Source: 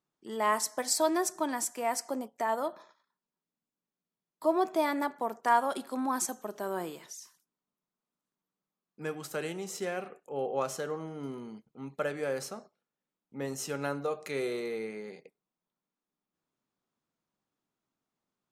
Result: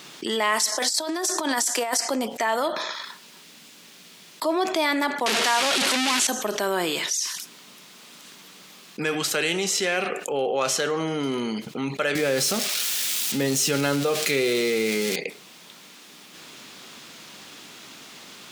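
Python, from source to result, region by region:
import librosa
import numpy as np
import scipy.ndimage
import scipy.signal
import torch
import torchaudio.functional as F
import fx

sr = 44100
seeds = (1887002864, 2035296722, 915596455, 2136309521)

y = fx.chain(x, sr, fx.highpass(hz=260.0, slope=24),
    fx.over_compress(threshold_db=-36.0, ratio=-0.5),
    fx.peak_eq(hz=2400.0, db=-8.0, octaves=0.54), at=(0.72, 2.01))
y = fx.chain(y, sr, fx.delta_mod(bps=64000, step_db=-25.0),
    fx.highpass(hz=160.0, slope=12), at=(5.26, 6.27))
y = fx.chain(y, sr, fx.crossing_spikes(level_db=-32.5),
    fx.low_shelf(hz=380.0, db=12.0), at=(12.15, 15.16))
y = fx.weighting(y, sr, curve='D')
y = fx.env_flatten(y, sr, amount_pct=70)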